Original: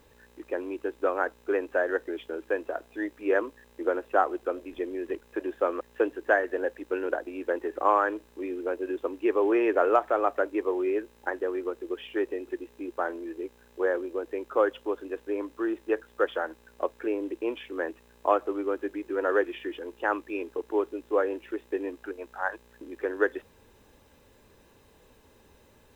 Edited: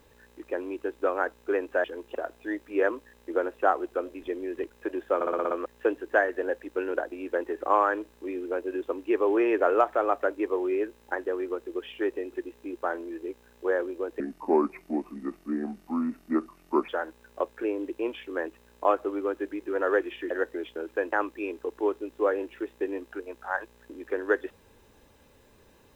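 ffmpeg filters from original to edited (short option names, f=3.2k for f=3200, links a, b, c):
-filter_complex "[0:a]asplit=13[a][b][c][d][e][f][g][h][i][j][k][l][m];[a]atrim=end=1.842[n];[b]atrim=start=19.728:end=20.042[o];[c]atrim=start=2.658:end=5.722[p];[d]atrim=start=5.658:end=5.722[q];[e]atrim=start=5.658:end=5.722[r];[f]atrim=start=5.658:end=5.722[s];[g]atrim=start=5.658:end=5.722[t];[h]atrim=start=5.658:end=5.722[u];[i]atrim=start=5.658:end=14.354[v];[j]atrim=start=14.35:end=16.31,asetpts=PTS-STARTPTS,asetrate=32193,aresample=44100,atrim=end_sample=118405,asetpts=PTS-STARTPTS[w];[k]atrim=start=16.306:end=19.732[x];[l]atrim=start=1.838:end=2.662[y];[m]atrim=start=20.038[z];[n][o]acrossfade=d=0.004:c1=hsin:c2=hsin[aa];[aa][p]acrossfade=d=0.004:c1=hsin:c2=hsin[ab];[ab][q]acrossfade=d=0.004:c1=hsin:c2=hsin[ac];[ac][r]acrossfade=d=0.004:c1=hsin:c2=hsin[ad];[ad][s]acrossfade=d=0.004:c1=hsin:c2=hsin[ae];[ae][t]acrossfade=d=0.004:c1=hsin:c2=hsin[af];[af][u]acrossfade=d=0.004:c1=hsin:c2=hsin[ag];[ag][v]acrossfade=d=0.004:c1=hsin:c2=hsin[ah];[ah][w]acrossfade=d=0.004:c1=hsin:c2=hsin[ai];[ai][x]acrossfade=d=0.004:c1=hsin:c2=hsin[aj];[aj][y]acrossfade=d=0.004:c1=hsin:c2=hsin[ak];[ak][z]acrossfade=d=0.004:c1=hsin:c2=hsin"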